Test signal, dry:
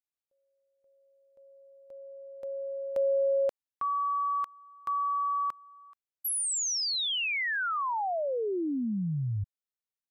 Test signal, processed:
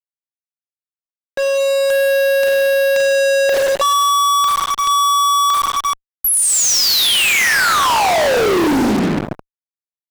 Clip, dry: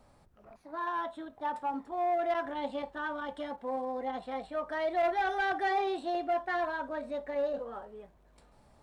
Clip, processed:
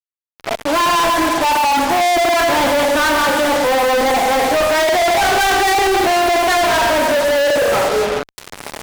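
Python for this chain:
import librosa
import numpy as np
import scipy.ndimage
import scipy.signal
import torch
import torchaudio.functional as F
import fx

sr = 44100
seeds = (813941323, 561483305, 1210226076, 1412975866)

y = fx.recorder_agc(x, sr, target_db=-29.5, rise_db_per_s=7.1, max_gain_db=30)
y = scipy.signal.sosfilt(scipy.signal.butter(4, 280.0, 'highpass', fs=sr, output='sos'), y)
y = fx.transient(y, sr, attack_db=-4, sustain_db=-8)
y = fx.rev_schroeder(y, sr, rt60_s=1.3, comb_ms=33, drr_db=3.5)
y = fx.fuzz(y, sr, gain_db=58.0, gate_db=-51.0)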